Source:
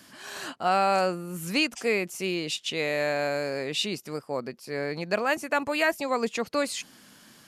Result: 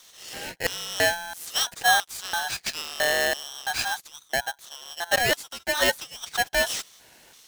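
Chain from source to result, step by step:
auto-filter high-pass square 1.5 Hz 410–4,300 Hz
ring modulator with a square carrier 1,200 Hz

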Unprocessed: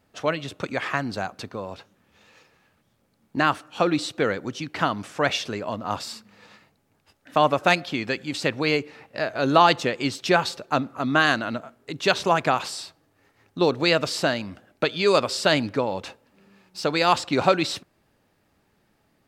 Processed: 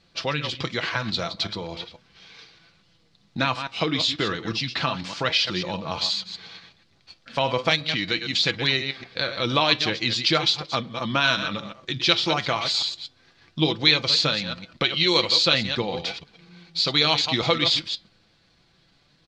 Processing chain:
delay that plays each chunk backwards 122 ms, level −10 dB
flanger 0.36 Hz, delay 4.9 ms, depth 4 ms, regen +74%
high-shelf EQ 2,200 Hz +12 dB
downward compressor 1.5 to 1, threshold −33 dBFS, peak gain reduction 7.5 dB
low-pass with resonance 4,900 Hz, resonance Q 2.5
low-shelf EQ 230 Hz +8 dB
pitch shifter −2 semitones
comb filter 6 ms, depth 35%
level +2 dB

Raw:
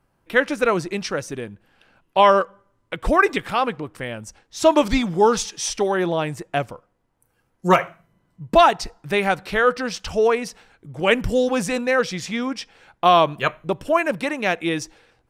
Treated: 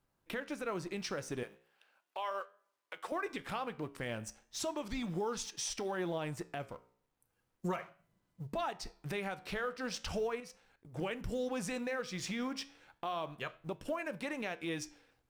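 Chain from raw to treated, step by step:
mu-law and A-law mismatch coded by A
downward compressor 5 to 1, threshold −29 dBFS, peak gain reduction 18 dB
brickwall limiter −23.5 dBFS, peak gain reduction 9 dB
0:01.43–0:03.12: high-pass filter 580 Hz 12 dB per octave
0:10.40–0:10.94: output level in coarse steps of 16 dB
flanger 0.36 Hz, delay 9.5 ms, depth 7.6 ms, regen −82%

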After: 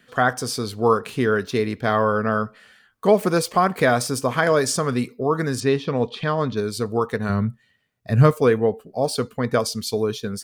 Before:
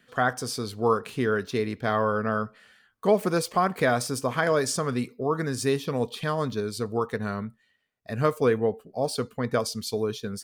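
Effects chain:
0:05.60–0:06.57: low-pass filter 4,100 Hz 12 dB per octave
0:07.29–0:08.31: parametric band 120 Hz +11 dB 1.5 octaves
level +5 dB

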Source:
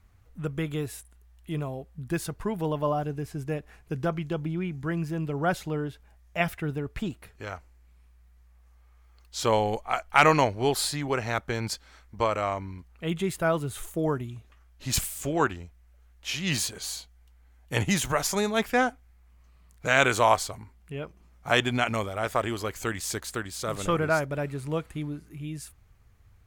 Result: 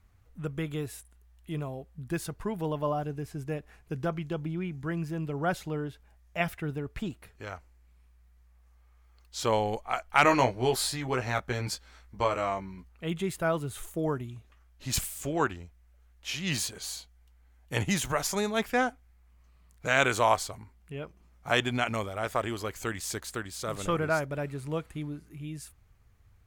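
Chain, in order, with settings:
0:10.23–0:12.89: double-tracking delay 16 ms −4.5 dB
level −3 dB

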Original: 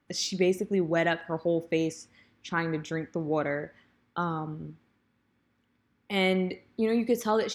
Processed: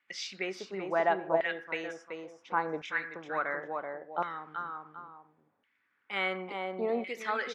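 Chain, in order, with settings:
multi-tap delay 381/779 ms −6/−18.5 dB
auto-filter band-pass saw down 0.71 Hz 670–2,300 Hz
level +6 dB

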